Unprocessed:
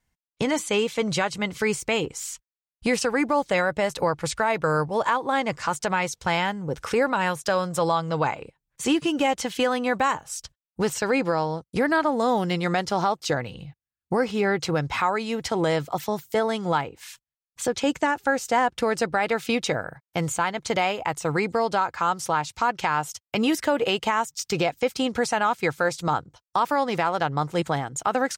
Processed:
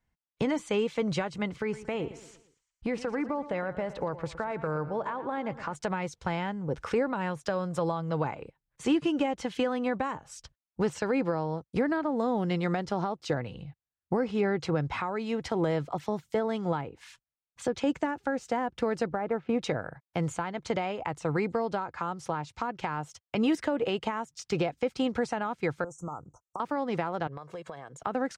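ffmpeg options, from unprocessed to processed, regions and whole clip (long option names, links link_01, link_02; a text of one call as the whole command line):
ffmpeg -i in.wav -filter_complex "[0:a]asettb=1/sr,asplit=3[link_01][link_02][link_03];[link_01]atrim=end=1.564[link_04];[link_02]atrim=start=1.56:end=5.75,asetpts=PTS-STARTPTS,afade=type=in:duration=0.004:curve=qsin,afade=type=out:start_time=4.186:duration=0.004:curve=qsin,highshelf=frequency=3600:gain=-11,acompressor=threshold=-26dB:ratio=2:attack=3.2:release=140:knee=1:detection=peak,aecho=1:1:115|230|345|460:0.178|0.08|0.036|0.0162,atrim=end_sample=184779[link_05];[link_03]atrim=start=5.746[link_06];[link_04][link_05]acrossfade=duration=0.004:curve1=hsin:curve2=qsin[link_07];[link_07][link_06]acrossfade=duration=0.004:curve1=qsin:curve2=hsin,asettb=1/sr,asplit=3[link_08][link_09][link_10];[link_08]atrim=end=19.114[link_11];[link_09]atrim=start=19.11:end=19.59,asetpts=PTS-STARTPTS,afade=type=in:duration=0.004:curve=qsin,afade=type=out:start_time=0.476:duration=0.004:curve=qsin,lowpass=1300,acrusher=bits=9:mode=log:mix=0:aa=0.000001[link_12];[link_10]atrim=start=19.586[link_13];[link_11][link_12]acrossfade=duration=0.004:curve1=hsin:curve2=qsin[link_14];[link_14][link_13]acrossfade=duration=0.004:curve1=qsin:curve2=hsin,asettb=1/sr,asplit=3[link_15][link_16][link_17];[link_15]atrim=end=25.844[link_18];[link_16]atrim=start=25.84:end=26.6,asetpts=PTS-STARTPTS,afade=type=in:duration=0.004:curve=qsin,afade=type=out:start_time=0.756:duration=0.004:curve=qsin,equalizer=frequency=7400:width_type=o:width=1.6:gain=13,acompressor=threshold=-29dB:ratio=16:attack=3.2:release=140:knee=1:detection=peak,asuperstop=centerf=2900:order=20:qfactor=0.64[link_19];[link_17]atrim=start=26.596[link_20];[link_18][link_19]acrossfade=duration=0.004:curve1=hsin:curve2=qsin[link_21];[link_21][link_20]acrossfade=duration=0.004:curve1=qsin:curve2=hsin,asettb=1/sr,asplit=3[link_22][link_23][link_24];[link_22]atrim=end=27.274[link_25];[link_23]atrim=start=27.27:end=28.02,asetpts=PTS-STARTPTS,afade=type=in:duration=0.004:curve=qsin,afade=type=out:start_time=0.746:duration=0.004:curve=qsin,highpass=210,aecho=1:1:1.8:0.51,atrim=end_sample=33075,acompressor=threshold=-33dB:ratio=16:attack=3.2:release=140:knee=1:detection=peak[link_26];[link_24]atrim=start=28.016[link_27];[link_25][link_26]acrossfade=duration=0.004:curve1=hsin:curve2=qsin[link_28];[link_28][link_27]acrossfade=duration=0.004:curve1=qsin:curve2=hsin,lowpass=10000,highshelf=frequency=3700:gain=-12,acrossover=split=440[link_29][link_30];[link_30]acompressor=threshold=-28dB:ratio=6[link_31];[link_29][link_31]amix=inputs=2:normalize=0,volume=-2.5dB" out.wav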